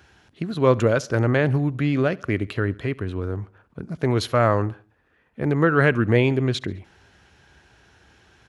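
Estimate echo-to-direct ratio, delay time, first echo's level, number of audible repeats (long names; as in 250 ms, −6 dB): −22.5 dB, 69 ms, −23.5 dB, 2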